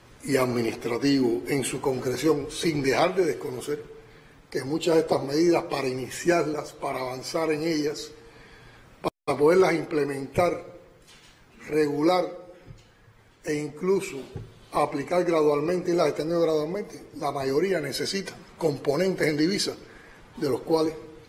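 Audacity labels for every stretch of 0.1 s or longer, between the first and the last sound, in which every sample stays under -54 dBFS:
9.100000	9.270000	silence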